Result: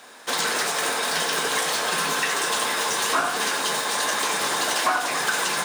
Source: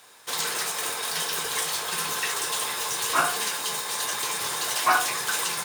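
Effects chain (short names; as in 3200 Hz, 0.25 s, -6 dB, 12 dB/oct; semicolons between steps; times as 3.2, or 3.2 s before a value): fifteen-band EQ 100 Hz -10 dB, 250 Hz +10 dB, 630 Hz +6 dB, 1600 Hz +4 dB, 16000 Hz -11 dB; compressor, threshold -25 dBFS, peak gain reduction 12 dB; warbling echo 89 ms, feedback 74%, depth 121 cents, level -12 dB; gain +5 dB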